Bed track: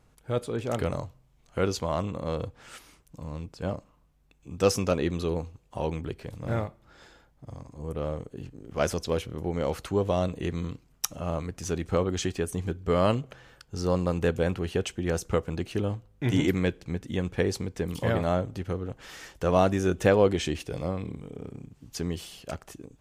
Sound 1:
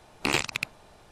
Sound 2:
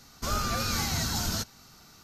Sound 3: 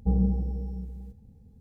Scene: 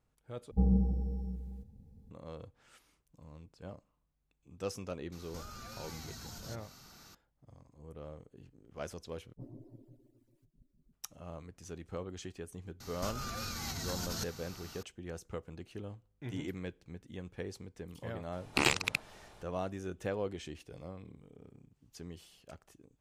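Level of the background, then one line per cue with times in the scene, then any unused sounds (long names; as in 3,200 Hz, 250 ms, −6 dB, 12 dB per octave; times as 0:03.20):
bed track −15.5 dB
0:00.51: overwrite with 3 −3.5 dB
0:05.12: mix in 2 −2.5 dB + downward compressor 4 to 1, threshold −45 dBFS
0:09.33: overwrite with 3 −8 dB + harmonic-percussive split with one part muted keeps percussive
0:12.80: mix in 2 −3.5 dB + compressor whose output falls as the input rises −36 dBFS
0:18.32: mix in 1 −2.5 dB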